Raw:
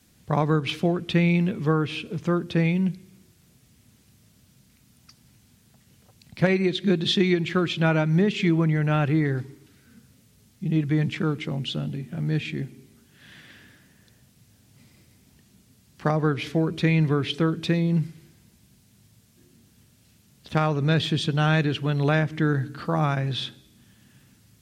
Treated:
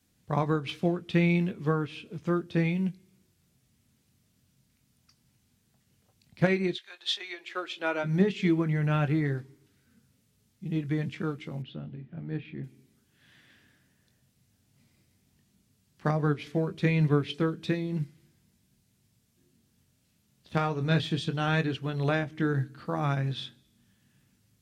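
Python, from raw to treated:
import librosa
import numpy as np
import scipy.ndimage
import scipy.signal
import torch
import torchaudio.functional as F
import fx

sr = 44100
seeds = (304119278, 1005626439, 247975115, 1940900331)

y = fx.highpass(x, sr, hz=fx.line((6.74, 970.0), (8.03, 280.0)), slope=24, at=(6.74, 8.03), fade=0.02)
y = fx.chorus_voices(y, sr, voices=2, hz=0.12, base_ms=22, depth_ms=1.6, mix_pct=25)
y = fx.air_absorb(y, sr, metres=350.0, at=(11.62, 12.64))
y = fx.upward_expand(y, sr, threshold_db=-36.0, expansion=1.5)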